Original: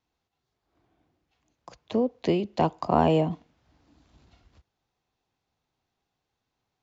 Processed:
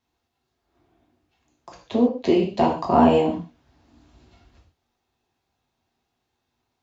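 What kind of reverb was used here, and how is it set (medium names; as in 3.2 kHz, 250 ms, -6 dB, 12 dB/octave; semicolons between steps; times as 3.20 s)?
gated-style reverb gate 170 ms falling, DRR -1.5 dB; trim +1 dB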